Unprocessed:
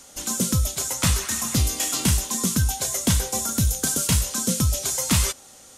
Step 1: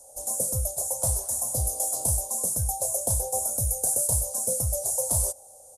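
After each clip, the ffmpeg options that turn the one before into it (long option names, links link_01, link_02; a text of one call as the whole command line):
ffmpeg -i in.wav -af "firequalizer=gain_entry='entry(120,0);entry(180,-14);entry(350,-9);entry(540,12);entry(790,7);entry(1200,-16);entry(2300,-30);entry(4800,-9);entry(10000,13);entry(15000,-2)':delay=0.05:min_phase=1,volume=-7dB" out.wav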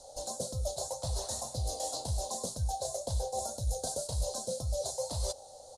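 ffmpeg -i in.wav -af "lowpass=frequency=4100:width_type=q:width=5.9,areverse,acompressor=threshold=-36dB:ratio=6,areverse,flanger=delay=0.2:depth=5.8:regen=78:speed=1.9:shape=triangular,volume=8.5dB" out.wav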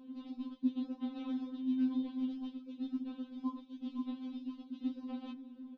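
ffmpeg -i in.wav -af "highpass=frequency=550:width_type=q:width=0.5412,highpass=frequency=550:width_type=q:width=1.307,lowpass=frequency=2800:width_type=q:width=0.5176,lowpass=frequency=2800:width_type=q:width=0.7071,lowpass=frequency=2800:width_type=q:width=1.932,afreqshift=-360,equalizer=frequency=250:width_type=o:width=1:gain=6,equalizer=frequency=500:width_type=o:width=1:gain=-12,equalizer=frequency=1000:width_type=o:width=1:gain=4,afftfilt=real='re*3.46*eq(mod(b,12),0)':imag='im*3.46*eq(mod(b,12),0)':win_size=2048:overlap=0.75,volume=6.5dB" out.wav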